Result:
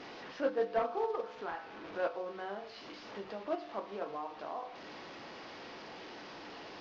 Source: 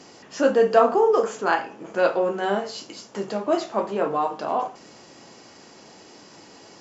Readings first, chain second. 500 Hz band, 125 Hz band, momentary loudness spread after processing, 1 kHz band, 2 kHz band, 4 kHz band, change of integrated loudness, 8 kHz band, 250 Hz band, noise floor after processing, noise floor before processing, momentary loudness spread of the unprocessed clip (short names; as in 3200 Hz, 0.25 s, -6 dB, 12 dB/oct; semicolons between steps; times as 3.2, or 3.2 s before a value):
-15.5 dB, -17.0 dB, 14 LU, -15.5 dB, -14.5 dB, -11.5 dB, -17.0 dB, n/a, -16.0 dB, -50 dBFS, -48 dBFS, 16 LU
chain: delta modulation 32 kbps, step -30 dBFS; low shelf 230 Hz -10.5 dB; compressor 3:1, threshold -31 dBFS, peak gain reduction 12 dB; air absorption 230 m; gate -29 dBFS, range -10 dB; resonator 100 Hz, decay 1.3 s, harmonics odd, mix 70%; gain +12 dB